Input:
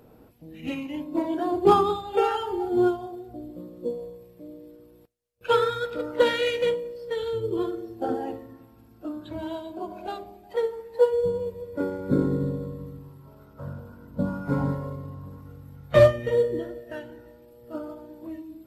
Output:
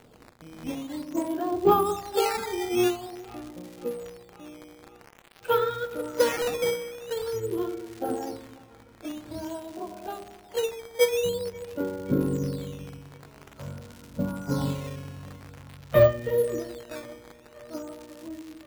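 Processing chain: high shelf 4700 Hz -8.5 dB; crackle 420/s -36 dBFS; decimation with a swept rate 9×, swing 160% 0.48 Hz; band-limited delay 0.533 s, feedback 67%, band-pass 1300 Hz, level -21 dB; gain -2 dB

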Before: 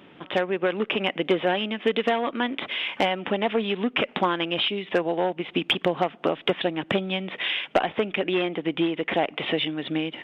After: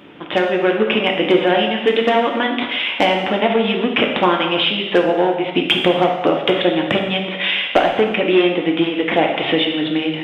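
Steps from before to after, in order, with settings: non-linear reverb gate 0.4 s falling, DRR 1 dB; gain +6 dB

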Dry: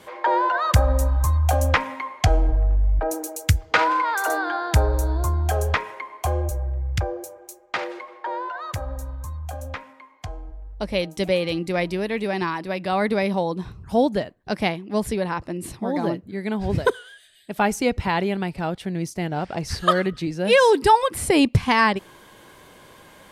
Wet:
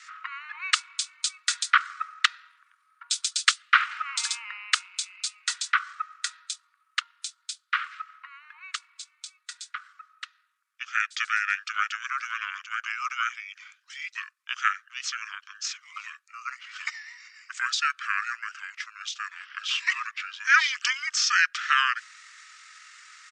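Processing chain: steep high-pass 2100 Hz 72 dB/oct; pitch shift -9 st; gain +6.5 dB

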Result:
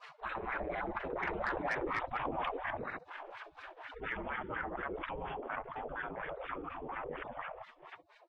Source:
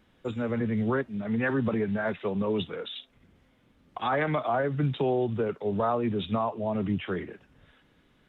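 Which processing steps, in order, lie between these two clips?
local time reversal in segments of 62 ms; Doppler pass-by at 1.9, 25 m/s, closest 13 m; spectral gate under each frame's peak -25 dB weak; LFO low-pass sine 4.2 Hz 420–1800 Hz; soft clip -36 dBFS, distortion -17 dB; fast leveller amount 70%; gain +9.5 dB

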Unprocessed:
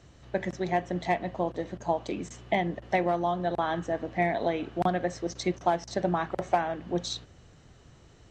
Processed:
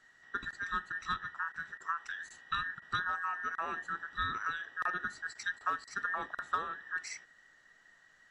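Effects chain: band inversion scrambler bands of 2000 Hz; gain -8.5 dB

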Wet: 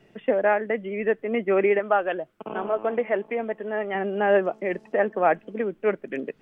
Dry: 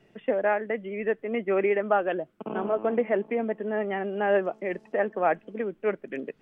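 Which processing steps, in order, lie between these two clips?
1.79–3.95 bell 220 Hz -7.5 dB 2 oct; gain +3.5 dB

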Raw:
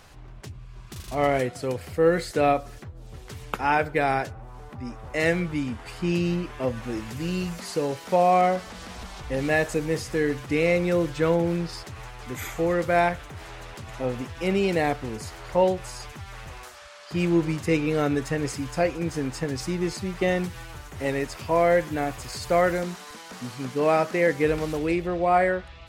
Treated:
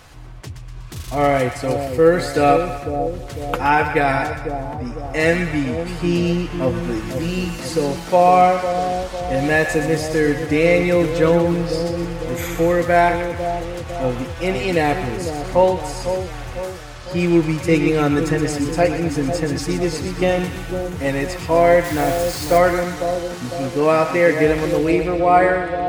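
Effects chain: notch comb 200 Hz; split-band echo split 790 Hz, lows 0.501 s, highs 0.122 s, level -7.5 dB; 21.84–22.58 requantised 6-bit, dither none; gain +7 dB

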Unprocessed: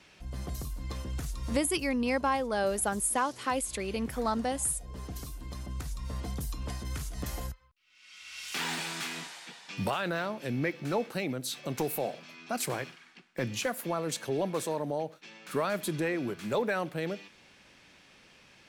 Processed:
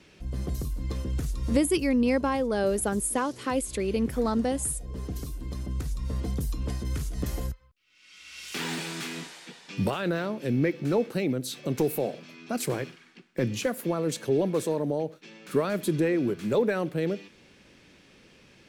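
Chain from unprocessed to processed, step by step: resonant low shelf 570 Hz +6 dB, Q 1.5

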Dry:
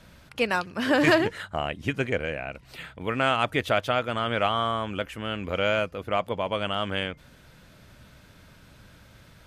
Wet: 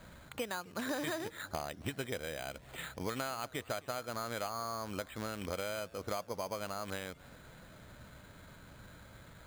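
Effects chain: rattling part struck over -30 dBFS, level -24 dBFS; low shelf 450 Hz -6 dB; compressor 6:1, threshold -37 dBFS, peak gain reduction 18.5 dB; air absorption 320 m; careless resampling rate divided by 8×, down filtered, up hold; warbling echo 0.267 s, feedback 62%, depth 178 cents, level -23.5 dB; gain +3 dB

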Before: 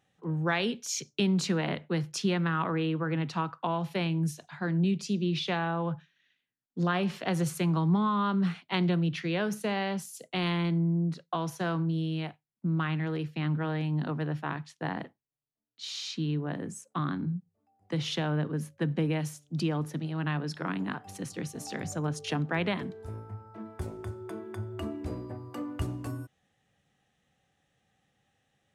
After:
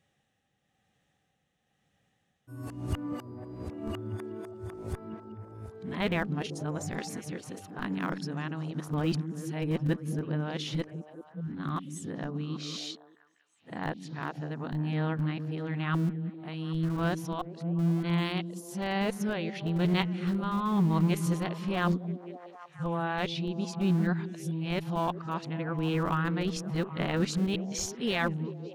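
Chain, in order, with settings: whole clip reversed; tremolo 1 Hz, depth 42%; in parallel at -10 dB: Schmitt trigger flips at -25.5 dBFS; on the sum: delay with a stepping band-pass 0.195 s, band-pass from 210 Hz, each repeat 0.7 oct, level -5.5 dB

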